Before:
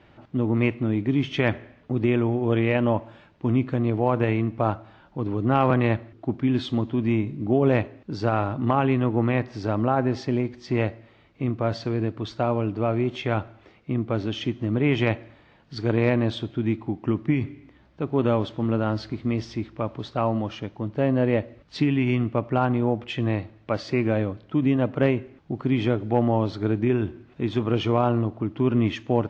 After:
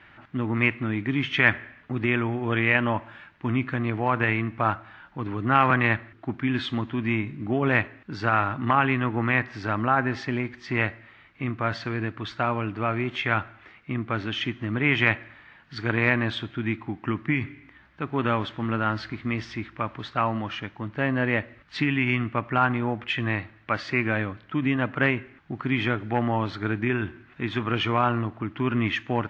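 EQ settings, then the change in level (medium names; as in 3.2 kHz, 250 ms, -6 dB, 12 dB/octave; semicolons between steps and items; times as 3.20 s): FFT filter 280 Hz 0 dB, 520 Hz -4 dB, 1.7 kHz +15 dB, 5.1 kHz +1 dB; -3.5 dB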